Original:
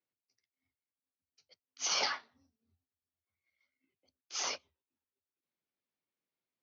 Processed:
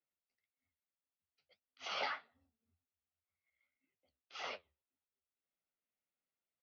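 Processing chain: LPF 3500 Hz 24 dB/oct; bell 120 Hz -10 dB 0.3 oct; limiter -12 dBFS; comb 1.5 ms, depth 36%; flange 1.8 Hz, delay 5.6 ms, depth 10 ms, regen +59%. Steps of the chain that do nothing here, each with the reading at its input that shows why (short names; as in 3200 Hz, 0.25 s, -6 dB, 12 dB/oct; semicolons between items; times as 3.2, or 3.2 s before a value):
limiter -12 dBFS: input peak -23.5 dBFS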